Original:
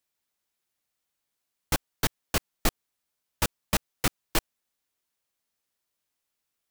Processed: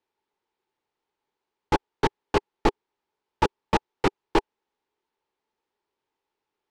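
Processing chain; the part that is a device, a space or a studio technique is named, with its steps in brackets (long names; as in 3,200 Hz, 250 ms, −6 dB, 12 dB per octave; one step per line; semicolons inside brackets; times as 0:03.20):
inside a cardboard box (low-pass filter 3,600 Hz 12 dB per octave; hollow resonant body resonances 400/860 Hz, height 15 dB, ringing for 25 ms)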